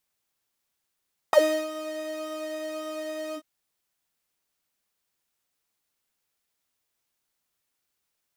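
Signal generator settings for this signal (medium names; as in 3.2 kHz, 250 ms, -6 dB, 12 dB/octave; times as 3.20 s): synth patch with pulse-width modulation D#5, detune 25 cents, sub -12.5 dB, filter highpass, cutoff 230 Hz, Q 8.2, filter envelope 2.5 oct, filter decay 0.07 s, filter sustain 25%, attack 1.2 ms, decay 0.34 s, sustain -13.5 dB, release 0.07 s, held 2.02 s, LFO 1.8 Hz, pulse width 42%, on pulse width 15%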